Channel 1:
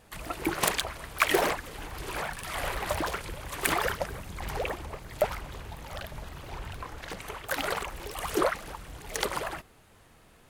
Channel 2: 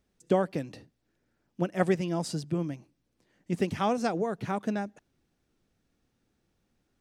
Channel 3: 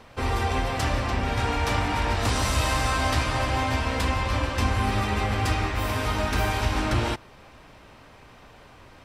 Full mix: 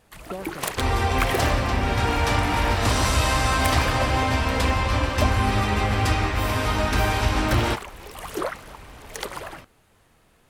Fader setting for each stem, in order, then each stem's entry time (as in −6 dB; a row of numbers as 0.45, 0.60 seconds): −2.0, −10.0, +3.0 decibels; 0.00, 0.00, 0.60 seconds